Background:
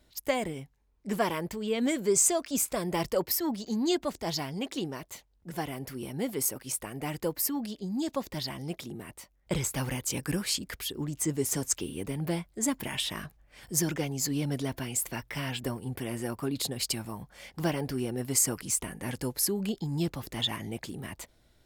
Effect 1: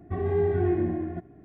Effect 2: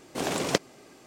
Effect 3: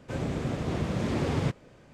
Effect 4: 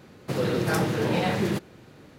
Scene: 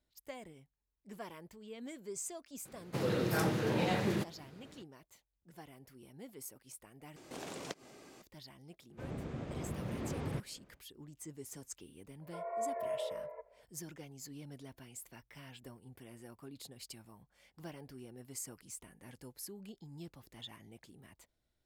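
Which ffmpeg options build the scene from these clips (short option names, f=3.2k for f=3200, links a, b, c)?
-filter_complex "[0:a]volume=-18.5dB[a];[2:a]acompressor=threshold=-51dB:ratio=2:attack=8:release=107:knee=1:detection=peak[b];[3:a]highshelf=f=4.1k:g=-8[c];[1:a]highpass=f=170:t=q:w=0.5412,highpass=f=170:t=q:w=1.307,lowpass=f=2k:t=q:w=0.5176,lowpass=f=2k:t=q:w=0.7071,lowpass=f=2k:t=q:w=1.932,afreqshift=280[d];[a]asplit=2[e][f];[e]atrim=end=7.164[g];[b]atrim=end=1.06,asetpts=PTS-STARTPTS,volume=-3dB[h];[f]atrim=start=8.216[i];[4:a]atrim=end=2.18,asetpts=PTS-STARTPTS,volume=-7.5dB,afade=t=in:d=0.004:c=hsin,afade=t=out:st=2.176:d=0.004:c=hsin,adelay=2650[j];[c]atrim=end=1.93,asetpts=PTS-STARTPTS,volume=-11dB,afade=t=in:d=0.1,afade=t=out:st=1.83:d=0.1,adelay=8890[k];[d]atrim=end=1.44,asetpts=PTS-STARTPTS,volume=-12.5dB,afade=t=in:d=0.004:c=hsin,afade=t=out:st=1.436:d=0.004:c=hsin,adelay=12210[l];[g][h]acrossfade=d=0.004:c1=hsin:c2=hsin[m];[m][i]acrossfade=d=0.004:c1=hsin:c2=hsin[n];[n][j][k][l]amix=inputs=4:normalize=0"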